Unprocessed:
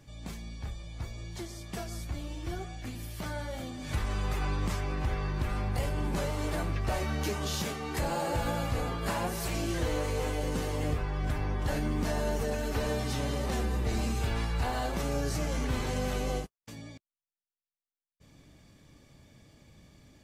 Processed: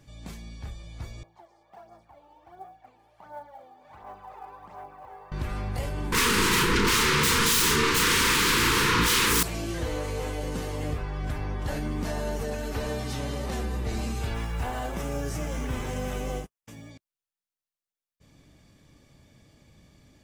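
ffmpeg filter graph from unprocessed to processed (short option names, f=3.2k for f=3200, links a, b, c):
-filter_complex "[0:a]asettb=1/sr,asplit=3[a][b][c];[a]atrim=end=1.234[d];[b]atrim=start=1.23:end=5.32,asetpts=PTS-STARTPTS,afade=t=in:d=0.004:c=qsin,afade=t=out:st=4.086:d=0.004:c=qsin,bandpass=f=810:t=q:w=3.9,aphaser=in_gain=1:out_gain=1:delay=2.4:decay=0.52:speed=1.4:type=sinusoidal,acrusher=bits=8:mode=log:mix=0:aa=0.000001[e];[c]atrim=start=5.316[f];[d][e]acrossfade=d=0.004:c1=hsin:c2=qsin[g];[g][f]acrossfade=d=0.004:c1=qsin:c2=hsin,asettb=1/sr,asplit=3[h][i][j];[h]atrim=end=6.124[k];[i]atrim=start=6.12:end=9.43,asetpts=PTS-STARTPTS,afade=t=in:d=0.004:c=qsin,afade=t=out:st=3.306:d=0.004:c=qsin,aeval=exprs='0.1*sin(PI/2*7.08*val(0)/0.1)':c=same,asuperstop=centerf=670:order=12:qfactor=1.7,asplit=2[l][m];[m]adelay=35,volume=-5dB[n];[l][n]amix=inputs=2:normalize=0,atrim=end_sample=145971[o];[j]atrim=start=9.426[p];[k][o]acrossfade=d=0.004:c1=hsin:c2=qsin[q];[q][p]acrossfade=d=0.004:c1=qsin:c2=hsin,asettb=1/sr,asplit=3[r][s][t];[r]atrim=end=14.344[u];[s]atrim=start=14.34:end=16.91,asetpts=PTS-STARTPTS,afade=t=in:d=0.004:c=qsin,afade=t=out:st=2.566:d=0.004:c=qsin,equalizer=f=4.3k:t=o:w=0.25:g=-12,acrusher=bits=7:mode=log:mix=0:aa=0.000001[v];[t]atrim=start=16.906[w];[u][v]acrossfade=d=0.004:c1=hsin:c2=qsin[x];[x][w]acrossfade=d=0.004:c1=qsin:c2=hsin"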